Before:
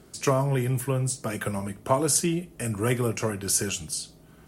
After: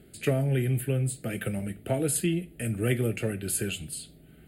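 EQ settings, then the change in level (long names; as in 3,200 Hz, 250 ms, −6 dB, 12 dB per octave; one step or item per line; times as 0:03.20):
notch filter 960 Hz, Q 20
phaser with its sweep stopped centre 2,500 Hz, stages 4
0.0 dB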